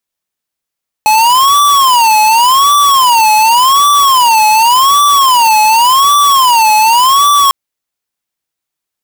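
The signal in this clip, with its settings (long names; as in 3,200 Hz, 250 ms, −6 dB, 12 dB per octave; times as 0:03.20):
siren wail 856–1,160 Hz 0.88 per second square −7 dBFS 6.45 s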